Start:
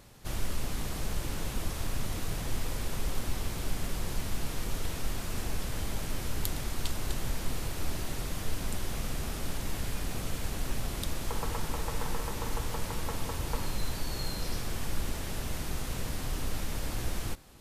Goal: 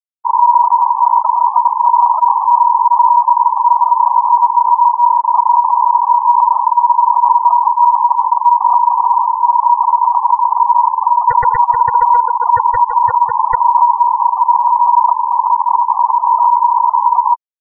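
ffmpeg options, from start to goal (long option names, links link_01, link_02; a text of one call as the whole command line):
ffmpeg -i in.wav -af "aeval=exprs='0.112*(abs(mod(val(0)/0.112+3,4)-2)-1)':channel_layout=same,adynamicsmooth=sensitivity=7.5:basefreq=790,afftfilt=real='re*gte(hypot(re,im),0.0794)':imag='im*gte(hypot(re,im),0.0794)':win_size=1024:overlap=0.75,aeval=exprs='val(0)*sin(2*PI*960*n/s)':channel_layout=same,alimiter=level_in=24.5dB:limit=-1dB:release=50:level=0:latency=1,volume=-1dB" out.wav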